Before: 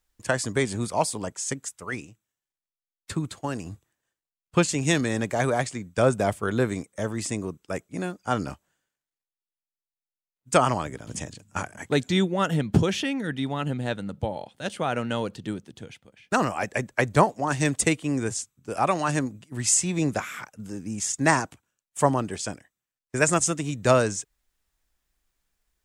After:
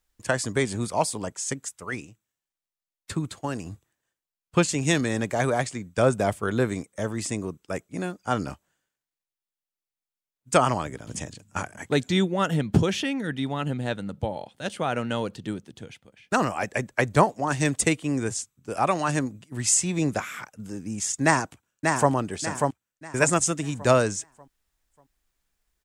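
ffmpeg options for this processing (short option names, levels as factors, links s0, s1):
-filter_complex "[0:a]asplit=2[s0][s1];[s1]afade=t=in:st=21.24:d=0.01,afade=t=out:st=22.11:d=0.01,aecho=0:1:590|1180|1770|2360|2950:0.668344|0.23392|0.0818721|0.0286552|0.0100293[s2];[s0][s2]amix=inputs=2:normalize=0"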